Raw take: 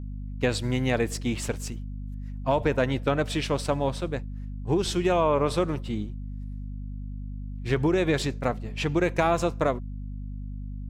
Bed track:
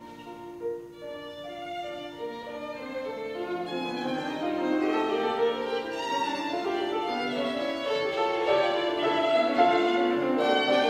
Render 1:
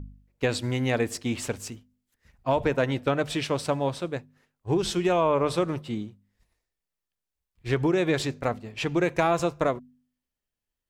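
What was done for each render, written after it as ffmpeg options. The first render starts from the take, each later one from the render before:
ffmpeg -i in.wav -af "bandreject=frequency=50:width_type=h:width=4,bandreject=frequency=100:width_type=h:width=4,bandreject=frequency=150:width_type=h:width=4,bandreject=frequency=200:width_type=h:width=4,bandreject=frequency=250:width_type=h:width=4" out.wav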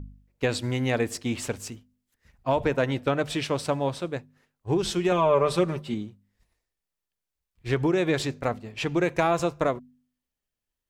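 ffmpeg -i in.wav -filter_complex "[0:a]asettb=1/sr,asplit=3[link_01][link_02][link_03];[link_01]atrim=end=5.114[link_04];[link_02]atrim=start=5.11:end=5.94,asetpts=PTS-STARTPTS,afade=type=in:duration=0.004:curve=qsin,afade=type=out:start_time=0.826:duration=0.004:curve=qsin,aecho=1:1:5.1:0.65,atrim=end_sample=36603[link_05];[link_03]atrim=start=5.936[link_06];[link_04][link_05]acrossfade=duration=0.004:curve1=hsin:curve2=qsin[link_07];[link_07][link_06]acrossfade=duration=0.004:curve1=qsin:curve2=hsin" out.wav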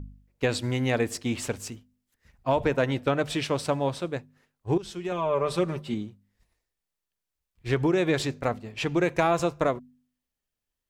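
ffmpeg -i in.wav -filter_complex "[0:a]asplit=2[link_01][link_02];[link_01]atrim=end=4.78,asetpts=PTS-STARTPTS,afade=type=out:start_time=4.776:duration=0.004:curve=hsin:silence=0.199526[link_03];[link_02]atrim=start=4.78,asetpts=PTS-STARTPTS,afade=type=in:duration=1.18:silence=0.199526[link_04];[link_03][link_04]concat=n=2:v=0:a=1" out.wav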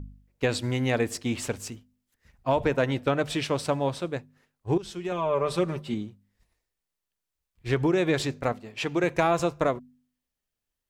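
ffmpeg -i in.wav -filter_complex "[0:a]asettb=1/sr,asplit=3[link_01][link_02][link_03];[link_01]atrim=end=8.524[link_04];[link_02]atrim=start=8.52:end=9.04,asetpts=PTS-STARTPTS,afade=type=in:duration=0.004:curve=qsin,afade=type=out:start_time=0.516:duration=0.004:curve=qsin,lowshelf=frequency=130:gain=-11.5[link_05];[link_03]atrim=start=9.036[link_06];[link_04][link_05]acrossfade=duration=0.004:curve1=hsin:curve2=qsin[link_07];[link_07][link_06]acrossfade=duration=0.004:curve1=qsin:curve2=hsin" out.wav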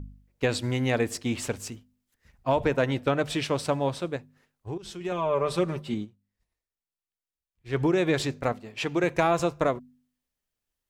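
ffmpeg -i in.wav -filter_complex "[0:a]asettb=1/sr,asplit=3[link_01][link_02][link_03];[link_01]atrim=end=4.164[link_04];[link_02]atrim=start=4.16:end=5.01,asetpts=PTS-STARTPTS,afade=type=in:duration=0.004:curve=qsin,afade=type=out:start_time=0.846:duration=0.004:curve=qsin,acompressor=threshold=-35dB:ratio=2.5:attack=3.2:release=140:knee=1:detection=peak[link_05];[link_03]atrim=start=5.006[link_06];[link_04][link_05]acrossfade=duration=0.004:curve1=hsin:curve2=qsin[link_07];[link_07][link_06]acrossfade=duration=0.004:curve1=qsin:curve2=hsin,asplit=3[link_08][link_09][link_10];[link_08]atrim=end=6.21,asetpts=PTS-STARTPTS,afade=type=out:start_time=6.04:duration=0.17:curve=exp:silence=0.298538[link_11];[link_09]atrim=start=6.21:end=7.58,asetpts=PTS-STARTPTS,volume=-10.5dB[link_12];[link_10]atrim=start=7.58,asetpts=PTS-STARTPTS,afade=type=in:duration=0.17:curve=exp:silence=0.298538[link_13];[link_11][link_12][link_13]concat=n=3:v=0:a=1" out.wav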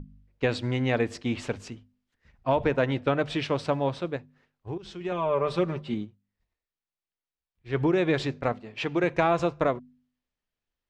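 ffmpeg -i in.wav -af "lowpass=4100,bandreject=frequency=50:width_type=h:width=6,bandreject=frequency=100:width_type=h:width=6" out.wav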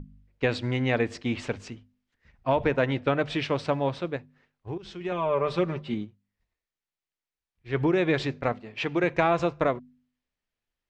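ffmpeg -i in.wav -af "lowpass=7700,equalizer=frequency=2100:width_type=o:width=0.77:gain=2.5" out.wav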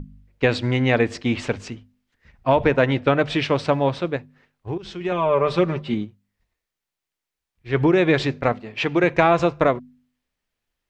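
ffmpeg -i in.wav -af "volume=6.5dB" out.wav

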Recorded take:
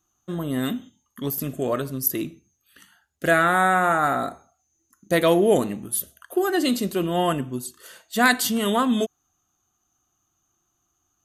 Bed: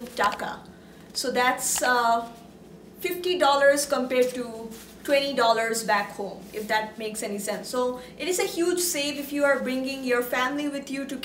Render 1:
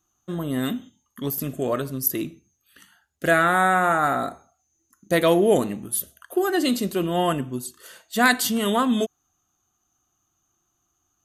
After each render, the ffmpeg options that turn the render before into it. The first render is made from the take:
ffmpeg -i in.wav -af anull out.wav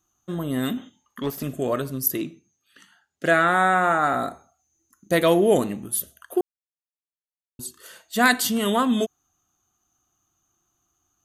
ffmpeg -i in.wav -filter_complex "[0:a]asettb=1/sr,asplit=3[link_01][link_02][link_03];[link_01]atrim=end=0.774[link_04];[link_02]atrim=start=0.77:end=1.43,asetpts=PTS-STARTPTS,afade=type=in:duration=0.004:curve=qsin,afade=type=out:start_time=0.656:duration=0.004:curve=qsin,asplit=2[link_05][link_06];[link_06]highpass=frequency=720:poles=1,volume=15dB,asoftclip=type=tanh:threshold=-15.5dB[link_07];[link_05][link_07]amix=inputs=2:normalize=0,lowpass=frequency=1900:poles=1,volume=-6dB[link_08];[link_03]atrim=start=1.426[link_09];[link_04][link_08]acrossfade=duration=0.004:curve1=hsin:curve2=qsin[link_10];[link_10][link_09]acrossfade=duration=0.004:curve1=qsin:curve2=hsin,asettb=1/sr,asplit=3[link_11][link_12][link_13];[link_11]atrim=end=2.174[link_14];[link_12]atrim=start=2.17:end=4.14,asetpts=PTS-STARTPTS,afade=type=in:duration=0.004:curve=qsin,afade=type=out:start_time=1.966:duration=0.004:curve=qsin,highpass=140,lowpass=7700[link_15];[link_13]atrim=start=4.136[link_16];[link_14][link_15]acrossfade=duration=0.004:curve1=hsin:curve2=qsin[link_17];[link_17][link_16]acrossfade=duration=0.004:curve1=qsin:curve2=hsin,asplit=3[link_18][link_19][link_20];[link_18]atrim=end=6.41,asetpts=PTS-STARTPTS,afade=type=out:start_time=6.406:duration=0.004:curve=hsin[link_21];[link_19]atrim=start=6.41:end=7.59,asetpts=PTS-STARTPTS,volume=0[link_22];[link_20]atrim=start=7.59,asetpts=PTS-STARTPTS,afade=type=in:duration=0.004:curve=hsin[link_23];[link_21][link_22][link_23]concat=n=3:v=0:a=1" out.wav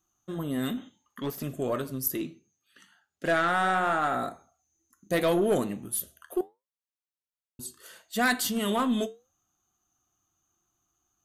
ffmpeg -i in.wav -af "flanger=delay=5.2:depth=7.4:regen=-74:speed=0.72:shape=sinusoidal,aeval=exprs='(tanh(7.08*val(0)+0.1)-tanh(0.1))/7.08':channel_layout=same" out.wav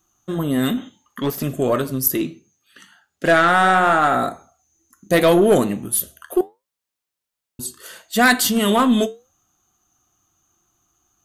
ffmpeg -i in.wav -af "volume=10.5dB" out.wav

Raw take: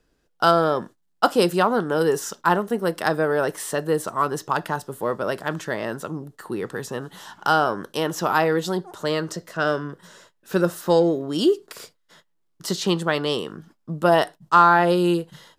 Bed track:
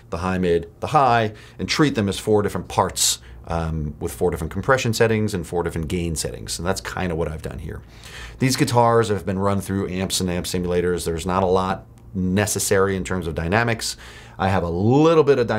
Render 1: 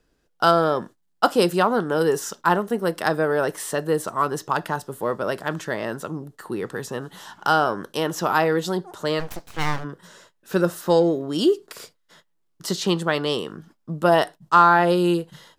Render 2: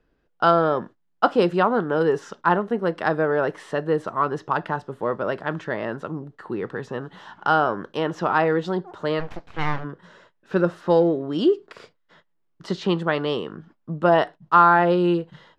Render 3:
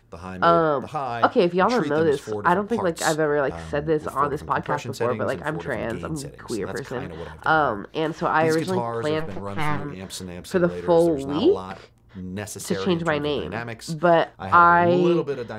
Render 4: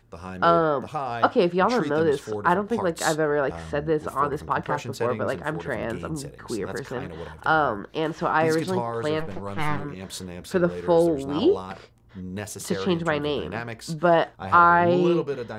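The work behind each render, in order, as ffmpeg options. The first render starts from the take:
ffmpeg -i in.wav -filter_complex "[0:a]asplit=3[link_01][link_02][link_03];[link_01]afade=type=out:start_time=9.19:duration=0.02[link_04];[link_02]aeval=exprs='abs(val(0))':channel_layout=same,afade=type=in:start_time=9.19:duration=0.02,afade=type=out:start_time=9.83:duration=0.02[link_05];[link_03]afade=type=in:start_time=9.83:duration=0.02[link_06];[link_04][link_05][link_06]amix=inputs=3:normalize=0" out.wav
ffmpeg -i in.wav -af "lowpass=2700" out.wav
ffmpeg -i in.wav -i bed.wav -filter_complex "[1:a]volume=-12dB[link_01];[0:a][link_01]amix=inputs=2:normalize=0" out.wav
ffmpeg -i in.wav -af "volume=-1.5dB" out.wav

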